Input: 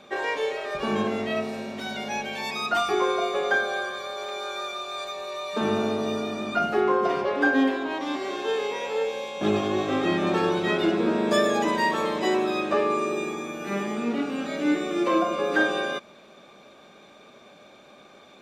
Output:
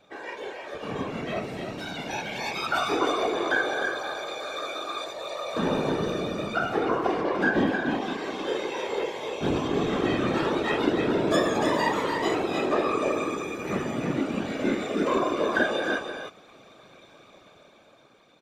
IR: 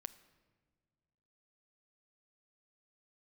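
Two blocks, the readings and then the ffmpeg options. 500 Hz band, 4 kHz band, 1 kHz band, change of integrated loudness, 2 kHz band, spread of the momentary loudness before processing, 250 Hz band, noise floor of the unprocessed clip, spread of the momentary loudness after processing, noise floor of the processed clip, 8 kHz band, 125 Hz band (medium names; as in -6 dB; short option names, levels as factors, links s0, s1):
-1.5 dB, -1.5 dB, -1.5 dB, -1.5 dB, -1.0 dB, 9 LU, -1.5 dB, -51 dBFS, 9 LU, -55 dBFS, -1.0 dB, +2.5 dB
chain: -af "dynaudnorm=f=290:g=9:m=2.82,aecho=1:1:305:0.531,afftfilt=real='hypot(re,im)*cos(2*PI*random(0))':imag='hypot(re,im)*sin(2*PI*random(1))':win_size=512:overlap=0.75,volume=0.631"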